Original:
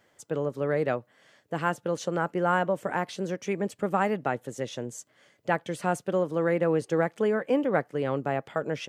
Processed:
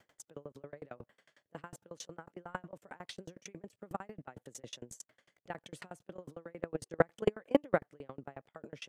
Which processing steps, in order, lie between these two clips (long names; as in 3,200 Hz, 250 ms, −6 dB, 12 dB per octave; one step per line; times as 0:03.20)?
0:07.07–0:07.86: high-shelf EQ 2,200 Hz +3.5 dB
output level in coarse steps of 23 dB
0:00.95–0:01.57: double-tracking delay 28 ms −4 dB
tremolo with a ramp in dB decaying 11 Hz, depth 33 dB
level +6.5 dB